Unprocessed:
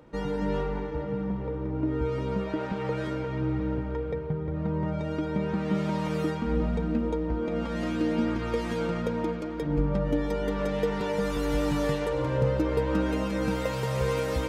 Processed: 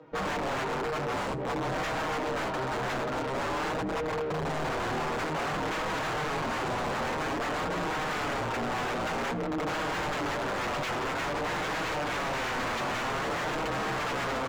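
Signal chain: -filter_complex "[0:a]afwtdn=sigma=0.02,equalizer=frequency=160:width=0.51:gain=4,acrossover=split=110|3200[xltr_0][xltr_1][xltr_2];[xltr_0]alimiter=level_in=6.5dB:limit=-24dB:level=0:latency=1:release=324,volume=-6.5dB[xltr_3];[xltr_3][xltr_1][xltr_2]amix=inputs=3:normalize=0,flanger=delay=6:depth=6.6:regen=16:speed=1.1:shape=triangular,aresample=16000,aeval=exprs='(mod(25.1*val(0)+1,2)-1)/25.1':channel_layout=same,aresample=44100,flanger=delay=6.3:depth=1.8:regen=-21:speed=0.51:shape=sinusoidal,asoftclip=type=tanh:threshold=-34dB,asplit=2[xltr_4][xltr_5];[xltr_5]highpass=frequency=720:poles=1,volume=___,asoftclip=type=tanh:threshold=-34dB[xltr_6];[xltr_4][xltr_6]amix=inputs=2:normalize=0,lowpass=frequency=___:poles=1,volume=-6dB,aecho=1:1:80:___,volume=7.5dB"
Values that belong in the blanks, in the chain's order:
26dB, 2.2k, 0.1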